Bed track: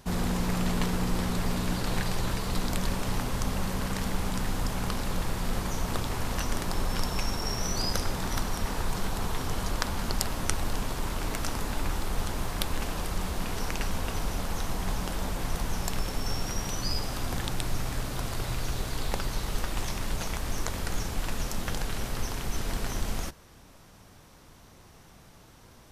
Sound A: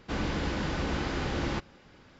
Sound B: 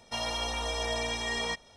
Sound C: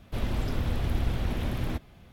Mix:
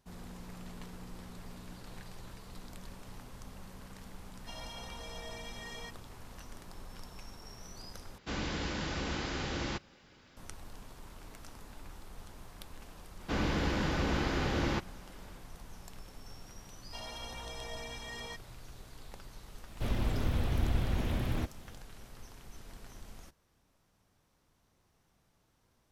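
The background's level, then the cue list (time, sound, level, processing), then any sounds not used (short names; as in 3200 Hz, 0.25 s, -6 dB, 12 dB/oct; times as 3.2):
bed track -19 dB
4.35 add B -14 dB
8.18 replace with A -6 dB + high shelf 2600 Hz +8 dB
13.2 add A -0.5 dB
16.81 add B -12 dB
19.68 add C -2.5 dB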